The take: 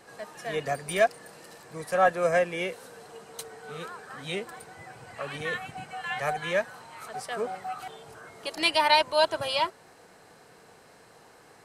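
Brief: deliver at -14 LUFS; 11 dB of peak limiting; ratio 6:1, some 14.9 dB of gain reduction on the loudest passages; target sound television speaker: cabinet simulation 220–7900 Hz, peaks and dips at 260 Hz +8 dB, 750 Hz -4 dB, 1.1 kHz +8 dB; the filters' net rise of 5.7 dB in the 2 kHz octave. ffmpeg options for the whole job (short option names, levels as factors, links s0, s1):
-af "equalizer=f=2000:t=o:g=6.5,acompressor=threshold=0.0282:ratio=6,alimiter=level_in=1.88:limit=0.0631:level=0:latency=1,volume=0.531,highpass=f=220:w=0.5412,highpass=f=220:w=1.3066,equalizer=f=260:t=q:w=4:g=8,equalizer=f=750:t=q:w=4:g=-4,equalizer=f=1100:t=q:w=4:g=8,lowpass=f=7900:w=0.5412,lowpass=f=7900:w=1.3066,volume=17.8"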